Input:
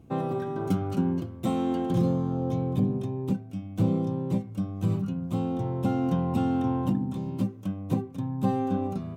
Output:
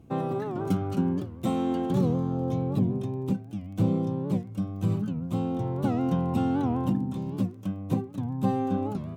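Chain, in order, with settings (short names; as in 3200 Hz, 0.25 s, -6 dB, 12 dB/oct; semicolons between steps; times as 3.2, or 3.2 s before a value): crackle 13/s -45 dBFS; record warp 78 rpm, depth 160 cents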